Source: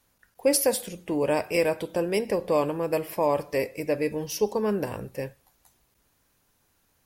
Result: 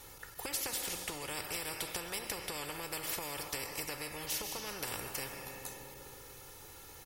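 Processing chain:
notch filter 1,600 Hz, Q 19
comb filter 2.3 ms, depth 70%
downward compressor, threshold −28 dBFS, peak gain reduction 13 dB
on a send at −14 dB: convolution reverb RT60 2.0 s, pre-delay 90 ms
on the sum: every bin compressed towards the loudest bin 4 to 1

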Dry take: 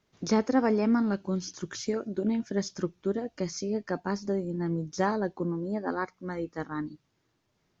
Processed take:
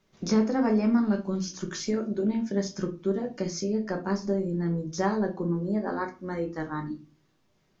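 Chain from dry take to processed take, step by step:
in parallel at +2 dB: downward compressor, threshold −33 dBFS, peak gain reduction 13.5 dB
on the sum: rectangular room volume 140 cubic metres, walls furnished, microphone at 1.1 metres
level −5.5 dB

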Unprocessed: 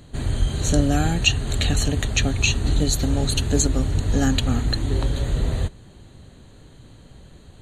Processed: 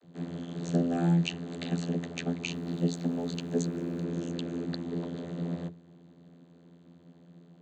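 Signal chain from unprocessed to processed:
0:03.67–0:04.62: healed spectral selection 220–2,700 Hz before
channel vocoder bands 32, saw 85.4 Hz
0:02.50–0:04.03: background noise pink −63 dBFS
level −6 dB

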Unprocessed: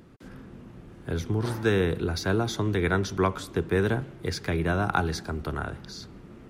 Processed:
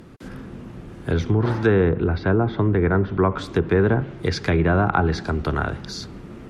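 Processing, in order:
treble cut that deepens with the level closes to 1,600 Hz, closed at −21 dBFS
in parallel at +0.5 dB: brickwall limiter −18.5 dBFS, peak gain reduction 8.5 dB
0:01.89–0:03.32: on the sum: high-frequency loss of the air 380 metres
level +2 dB

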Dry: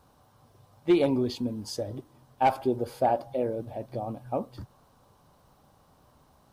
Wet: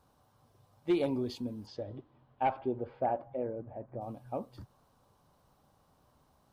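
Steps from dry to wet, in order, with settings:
0:01.65–0:04.00: low-pass filter 4,200 Hz → 1,700 Hz 24 dB per octave
level −7 dB

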